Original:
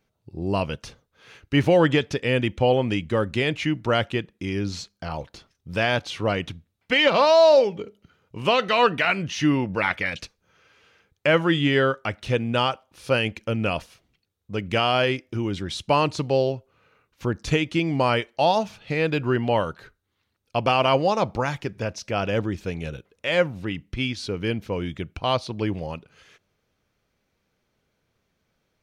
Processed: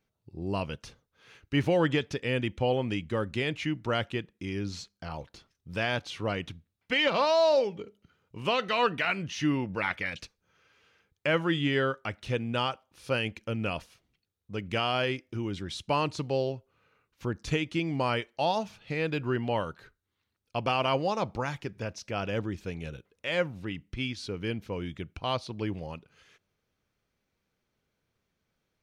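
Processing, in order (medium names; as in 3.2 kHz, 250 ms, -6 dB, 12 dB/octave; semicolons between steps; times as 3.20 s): peaking EQ 620 Hz -2 dB; trim -6.5 dB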